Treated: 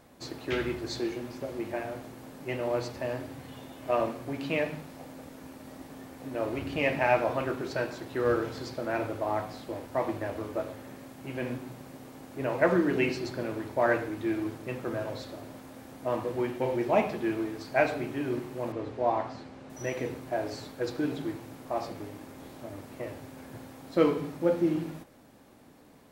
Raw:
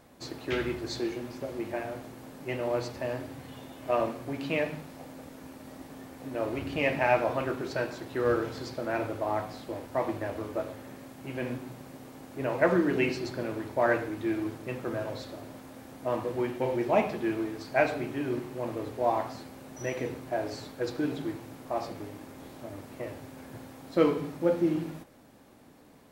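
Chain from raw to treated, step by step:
0:18.72–0:19.70: high-frequency loss of the air 100 metres

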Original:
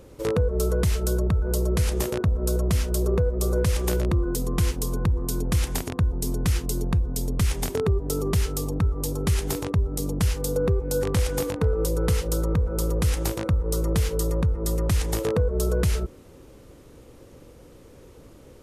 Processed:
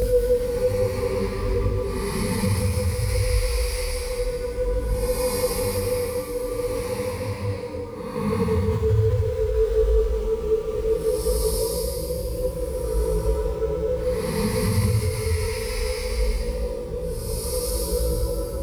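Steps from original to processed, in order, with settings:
EQ curve with evenly spaced ripples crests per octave 0.89, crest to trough 14 dB
in parallel at −10.5 dB: log-companded quantiser 4 bits
on the sum: extreme stretch with random phases 13×, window 0.10 s, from 0:10.97
boost into a limiter +8 dB
micro pitch shift up and down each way 21 cents
level −9 dB

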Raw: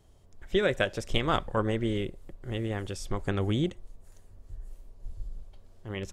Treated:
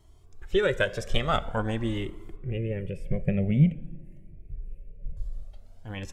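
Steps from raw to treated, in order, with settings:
0:02.36–0:05.17: drawn EQ curve 110 Hz 0 dB, 150 Hz +14 dB, 310 Hz −3 dB, 580 Hz +3 dB, 850 Hz −17 dB, 1,200 Hz −25 dB, 2,400 Hz +5 dB, 3,600 Hz −21 dB, 6,500 Hz −25 dB, 9,900 Hz −15 dB
dense smooth reverb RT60 1.8 s, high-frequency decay 0.5×, DRR 16 dB
flanger whose copies keep moving one way rising 0.47 Hz
level +5 dB

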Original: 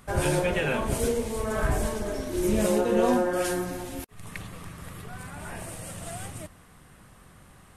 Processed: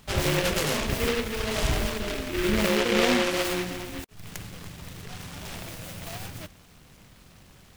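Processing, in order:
short delay modulated by noise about 2,000 Hz, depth 0.21 ms

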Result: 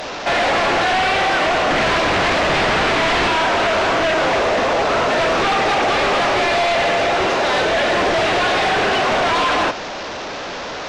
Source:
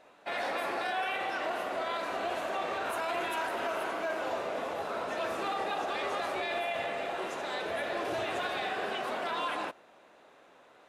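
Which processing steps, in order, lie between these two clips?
linear delta modulator 32 kbit/s, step −44 dBFS
0:01.69–0:03.28: low-shelf EQ 480 Hz +9.5 dB
sine wavefolder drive 12 dB, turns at −20 dBFS
level +6.5 dB

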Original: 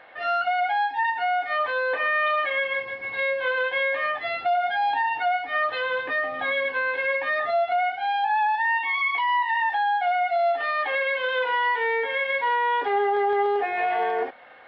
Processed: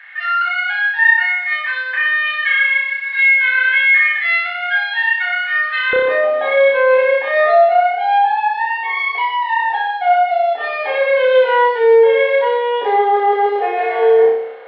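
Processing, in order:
high-pass with resonance 1,800 Hz, resonance Q 3.7, from 0:05.93 460 Hz
flutter between parallel walls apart 5.3 metres, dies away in 0.71 s
level +2 dB

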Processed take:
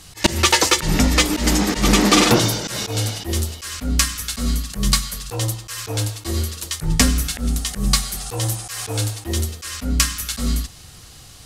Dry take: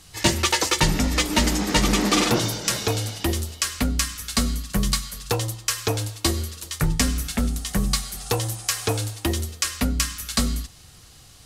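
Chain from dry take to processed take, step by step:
volume swells 131 ms
level +6 dB

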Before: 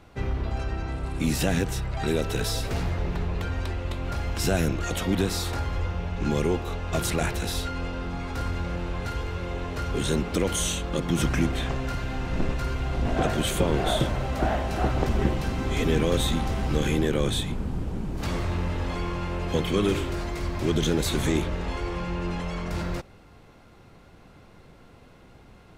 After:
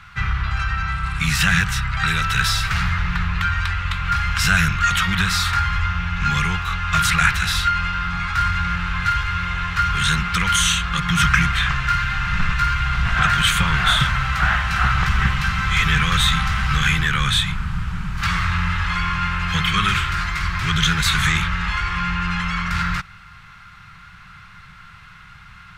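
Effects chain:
drawn EQ curve 180 Hz 0 dB, 260 Hz −23 dB, 600 Hz −20 dB, 1,300 Hz +13 dB, 11,000 Hz −2 dB
level +6 dB

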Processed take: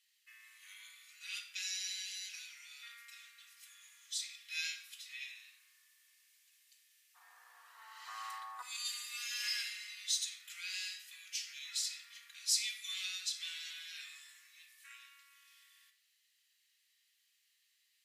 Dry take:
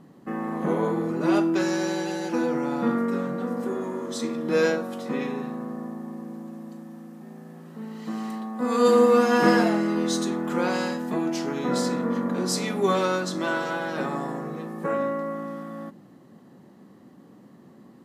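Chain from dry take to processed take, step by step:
Butterworth high-pass 2,300 Hz 36 dB per octave, from 0:07.14 980 Hz, from 0:08.61 2,300 Hz
convolution reverb RT60 0.85 s, pre-delay 4 ms, DRR 5 dB
level −3 dB

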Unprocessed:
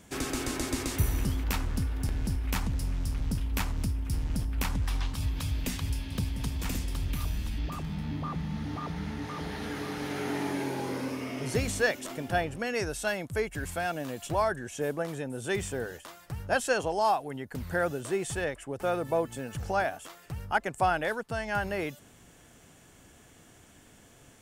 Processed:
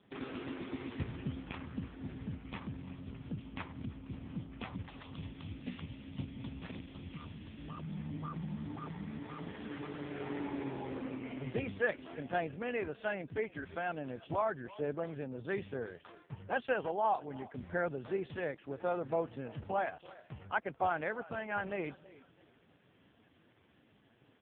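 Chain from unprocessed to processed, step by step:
echo with shifted repeats 329 ms, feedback 34%, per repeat −34 Hz, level −19 dB
level −5 dB
AMR narrowband 4.75 kbit/s 8,000 Hz

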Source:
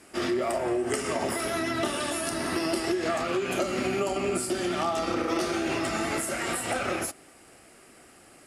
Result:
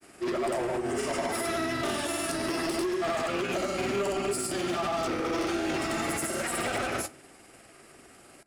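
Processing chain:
granular cloud 100 ms, grains 20 per second, pitch spread up and down by 0 semitones
hard clipping −27 dBFS, distortion −12 dB
on a send: convolution reverb RT60 0.55 s, pre-delay 3 ms, DRR 15.5 dB
on the sum: level +1.5 dB

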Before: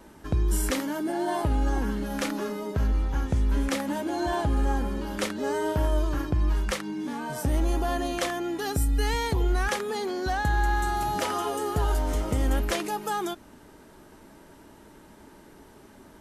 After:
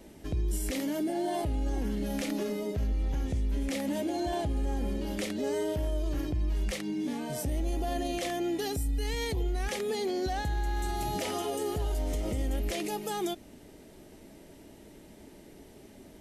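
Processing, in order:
flat-topped bell 1,200 Hz −10.5 dB 1.1 octaves
brickwall limiter −23.5 dBFS, peak gain reduction 8.5 dB

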